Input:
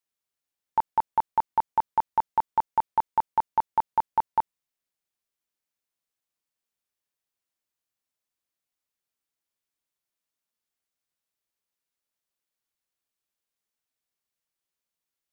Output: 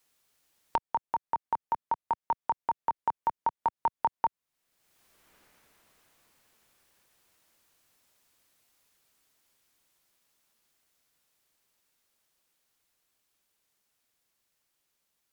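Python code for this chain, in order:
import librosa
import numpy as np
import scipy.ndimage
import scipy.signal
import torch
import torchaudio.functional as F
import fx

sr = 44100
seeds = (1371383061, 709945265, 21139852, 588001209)

y = fx.doppler_pass(x, sr, speed_mps=11, closest_m=5.1, pass_at_s=4.82)
y = fx.band_squash(y, sr, depth_pct=100)
y = y * 10.0 ** (6.0 / 20.0)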